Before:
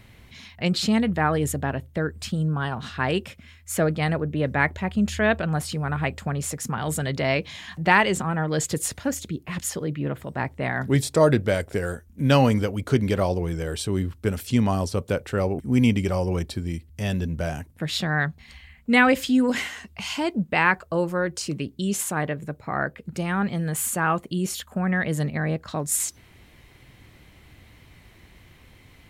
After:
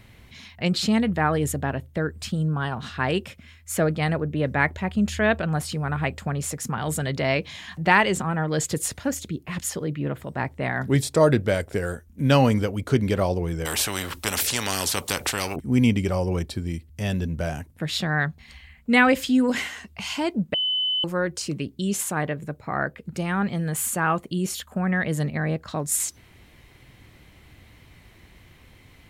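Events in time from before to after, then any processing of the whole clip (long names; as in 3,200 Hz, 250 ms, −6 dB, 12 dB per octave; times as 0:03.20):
0:13.65–0:15.56: every bin compressed towards the loudest bin 4 to 1
0:20.54–0:21.04: beep over 3,020 Hz −21 dBFS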